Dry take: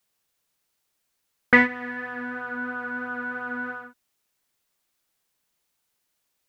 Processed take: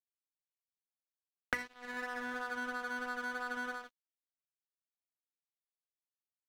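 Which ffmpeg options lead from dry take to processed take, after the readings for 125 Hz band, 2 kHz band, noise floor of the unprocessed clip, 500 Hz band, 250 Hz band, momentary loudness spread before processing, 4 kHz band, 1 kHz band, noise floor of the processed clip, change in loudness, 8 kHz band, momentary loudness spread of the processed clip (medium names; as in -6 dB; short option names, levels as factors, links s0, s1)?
under -15 dB, -13.5 dB, -76 dBFS, -13.5 dB, -17.5 dB, 14 LU, -6.0 dB, -9.5 dB, under -85 dBFS, -14.0 dB, no reading, 4 LU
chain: -filter_complex "[0:a]asplit=2[s0][s1];[s1]adynamicsmooth=sensitivity=1.5:basefreq=880,volume=0.891[s2];[s0][s2]amix=inputs=2:normalize=0,lowshelf=f=410:g=-9.5,acrossover=split=130[s3][s4];[s3]acrusher=bits=5:mix=0:aa=0.000001[s5];[s4]acompressor=threshold=0.0316:ratio=20[s6];[s5][s6]amix=inputs=2:normalize=0,bandreject=f=60:t=h:w=6,bandreject=f=120:t=h:w=6,bandreject=f=180:t=h:w=6,bandreject=f=240:t=h:w=6,bandreject=f=300:t=h:w=6,bandreject=f=360:t=h:w=6,bandreject=f=420:t=h:w=6,bandreject=f=480:t=h:w=6,aeval=exprs='sgn(val(0))*max(abs(val(0))-0.00531,0)':c=same,volume=0.75"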